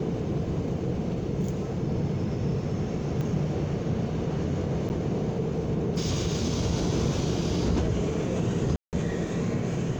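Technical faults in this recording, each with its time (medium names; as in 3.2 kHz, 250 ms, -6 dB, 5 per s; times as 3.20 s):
3.21 s: pop -21 dBFS
4.89–4.90 s: dropout 9.4 ms
8.76–8.93 s: dropout 168 ms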